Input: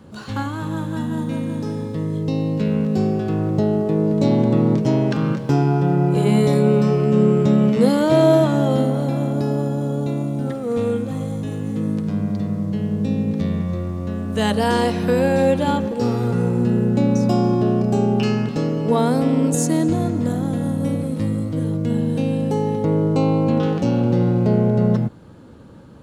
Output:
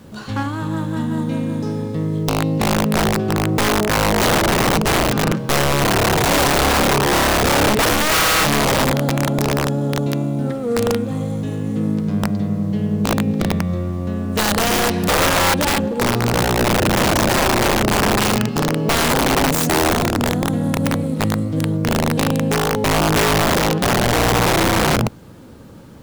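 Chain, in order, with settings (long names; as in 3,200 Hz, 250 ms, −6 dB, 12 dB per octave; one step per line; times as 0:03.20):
phase distortion by the signal itself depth 0.28 ms
wrap-around overflow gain 13 dB
background noise pink −56 dBFS
level +2.5 dB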